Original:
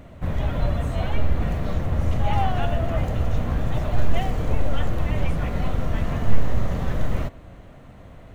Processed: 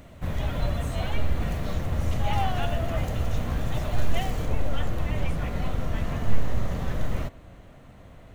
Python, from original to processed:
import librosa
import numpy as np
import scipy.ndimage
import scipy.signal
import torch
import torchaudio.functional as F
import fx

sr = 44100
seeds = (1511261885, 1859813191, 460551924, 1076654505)

y = fx.high_shelf(x, sr, hz=2900.0, db=fx.steps((0.0, 9.5), (4.45, 4.5)))
y = F.gain(torch.from_numpy(y), -4.0).numpy()